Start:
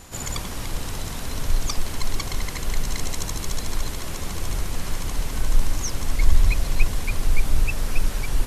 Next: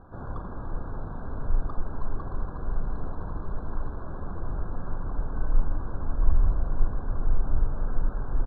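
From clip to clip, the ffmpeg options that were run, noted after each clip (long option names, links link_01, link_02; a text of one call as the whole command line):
ffmpeg -i in.wav -filter_complex "[0:a]lowpass=frequency=1500:width=0.5412,lowpass=frequency=1500:width=1.3066,asplit=2[link_01][link_02];[link_02]adelay=41,volume=-12dB[link_03];[link_01][link_03]amix=inputs=2:normalize=0,afftfilt=real='re*eq(mod(floor(b*sr/1024/1700),2),0)':imag='im*eq(mod(floor(b*sr/1024/1700),2),0)':win_size=1024:overlap=0.75,volume=-4dB" out.wav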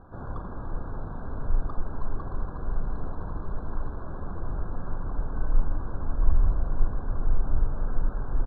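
ffmpeg -i in.wav -af anull out.wav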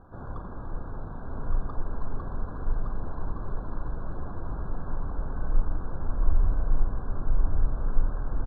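ffmpeg -i in.wav -af "aecho=1:1:1164:0.631,volume=-2dB" out.wav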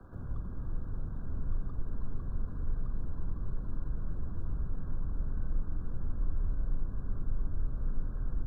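ffmpeg -i in.wav -filter_complex "[0:a]equalizer=frequency=810:width=1.6:gain=-8,acrossover=split=100|240[link_01][link_02][link_03];[link_01]acompressor=threshold=-29dB:ratio=4[link_04];[link_02]acompressor=threshold=-46dB:ratio=4[link_05];[link_03]acompressor=threshold=-58dB:ratio=4[link_06];[link_04][link_05][link_06]amix=inputs=3:normalize=0,acrossover=split=150|400|700[link_07][link_08][link_09][link_10];[link_09]acrusher=bits=5:mode=log:mix=0:aa=0.000001[link_11];[link_07][link_08][link_11][link_10]amix=inputs=4:normalize=0,volume=1.5dB" out.wav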